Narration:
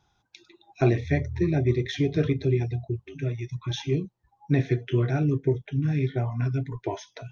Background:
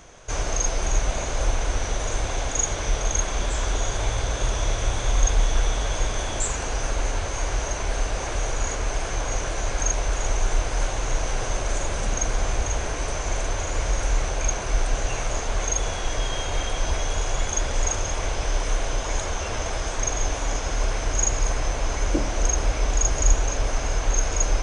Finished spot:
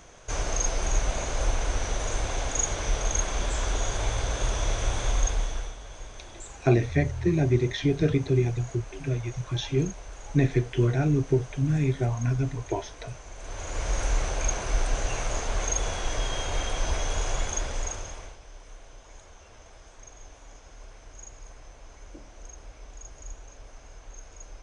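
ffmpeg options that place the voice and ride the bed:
-filter_complex "[0:a]adelay=5850,volume=1.06[s0];[1:a]volume=3.76,afade=t=out:st=5.05:d=0.71:silence=0.188365,afade=t=in:st=13.37:d=0.62:silence=0.188365,afade=t=out:st=17.31:d=1.08:silence=0.1[s1];[s0][s1]amix=inputs=2:normalize=0"

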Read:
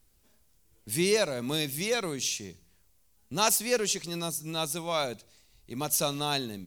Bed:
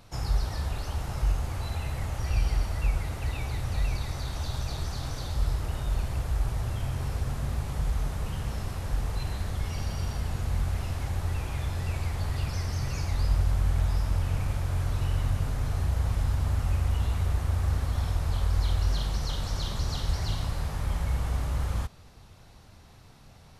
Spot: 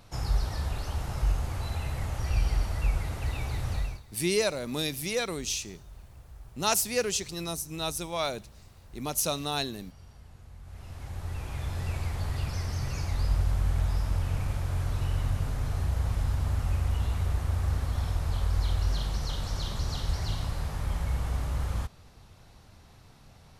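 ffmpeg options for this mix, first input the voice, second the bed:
-filter_complex "[0:a]adelay=3250,volume=0.891[s0];[1:a]volume=7.94,afade=t=out:st=3.72:d=0.3:silence=0.105925,afade=t=in:st=10.62:d=1.2:silence=0.11885[s1];[s0][s1]amix=inputs=2:normalize=0"

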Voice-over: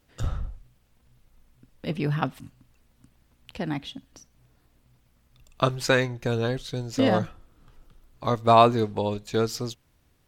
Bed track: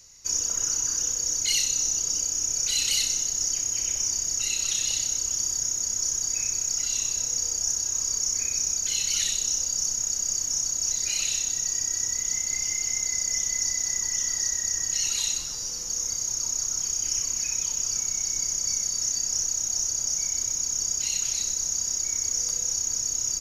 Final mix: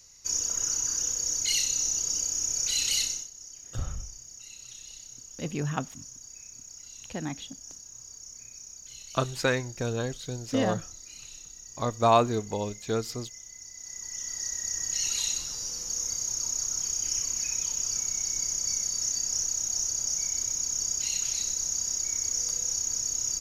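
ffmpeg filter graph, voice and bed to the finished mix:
-filter_complex "[0:a]adelay=3550,volume=0.596[s0];[1:a]volume=5.01,afade=t=out:st=3.01:d=0.28:silence=0.149624,afade=t=in:st=13.71:d=1.38:silence=0.149624[s1];[s0][s1]amix=inputs=2:normalize=0"

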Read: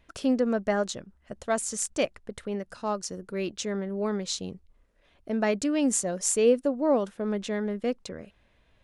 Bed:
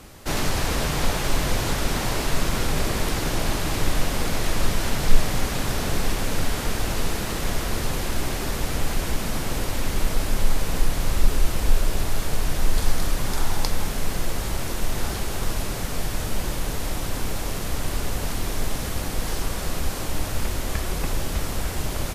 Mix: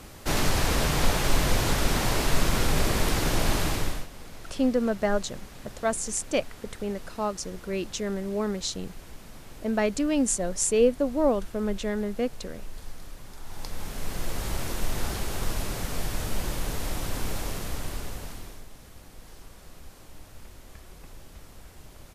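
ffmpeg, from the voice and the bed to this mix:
-filter_complex "[0:a]adelay=4350,volume=1.06[s0];[1:a]volume=5.96,afade=t=out:st=3.62:d=0.45:silence=0.112202,afade=t=in:st=13.42:d=1.1:silence=0.158489,afade=t=out:st=17.38:d=1.27:silence=0.133352[s1];[s0][s1]amix=inputs=2:normalize=0"

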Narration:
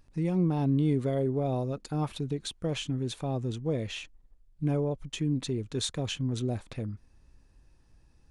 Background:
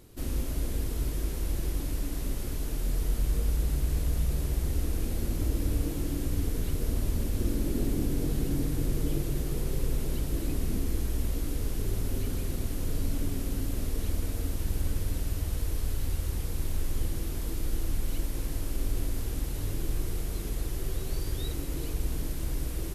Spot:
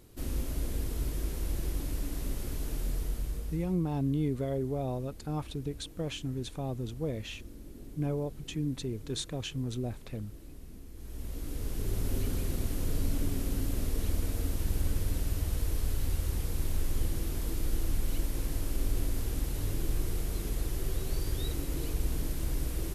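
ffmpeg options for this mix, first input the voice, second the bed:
-filter_complex "[0:a]adelay=3350,volume=0.631[s0];[1:a]volume=5.96,afade=t=out:st=2.78:d=0.99:silence=0.158489,afade=t=in:st=10.94:d=1.19:silence=0.125893[s1];[s0][s1]amix=inputs=2:normalize=0"

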